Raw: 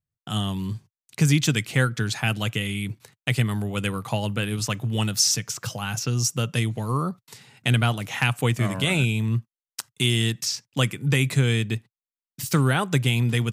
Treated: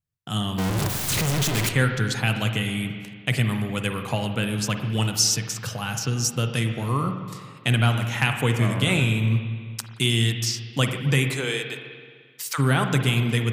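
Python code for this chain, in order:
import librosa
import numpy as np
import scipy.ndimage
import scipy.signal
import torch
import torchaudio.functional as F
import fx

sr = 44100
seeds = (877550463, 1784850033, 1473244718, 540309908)

y = fx.clip_1bit(x, sr, at=(0.58, 1.69))
y = fx.highpass(y, sr, hz=fx.line((11.28, 290.0), (12.58, 840.0)), slope=24, at=(11.28, 12.58), fade=0.02)
y = fx.rev_spring(y, sr, rt60_s=1.8, pass_ms=(43, 54), chirp_ms=35, drr_db=5.5)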